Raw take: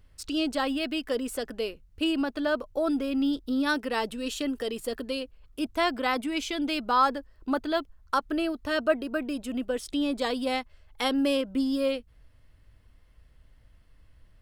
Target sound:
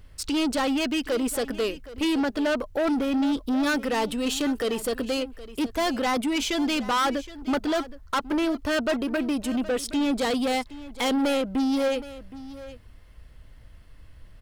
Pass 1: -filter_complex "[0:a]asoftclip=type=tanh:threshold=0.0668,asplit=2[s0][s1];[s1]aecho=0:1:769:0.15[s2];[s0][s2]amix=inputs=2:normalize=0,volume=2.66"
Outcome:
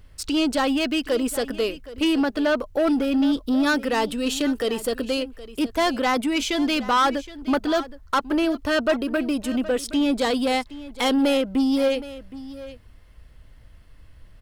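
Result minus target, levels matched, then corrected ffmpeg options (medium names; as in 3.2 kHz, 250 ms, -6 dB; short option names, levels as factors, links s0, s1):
saturation: distortion -5 dB
-filter_complex "[0:a]asoftclip=type=tanh:threshold=0.0335,asplit=2[s0][s1];[s1]aecho=0:1:769:0.15[s2];[s0][s2]amix=inputs=2:normalize=0,volume=2.66"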